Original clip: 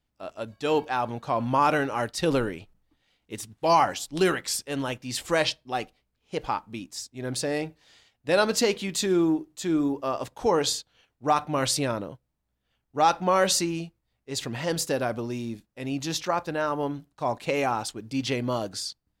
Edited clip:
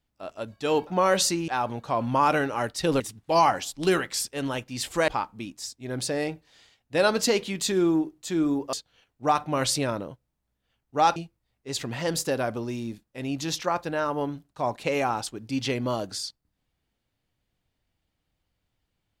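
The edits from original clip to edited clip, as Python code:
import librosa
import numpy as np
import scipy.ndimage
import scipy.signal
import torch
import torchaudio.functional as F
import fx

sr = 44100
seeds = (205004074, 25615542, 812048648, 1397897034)

y = fx.edit(x, sr, fx.cut(start_s=2.39, length_s=0.95),
    fx.cut(start_s=5.42, length_s=1.0),
    fx.cut(start_s=10.07, length_s=0.67),
    fx.move(start_s=13.17, length_s=0.61, to_s=0.87), tone=tone)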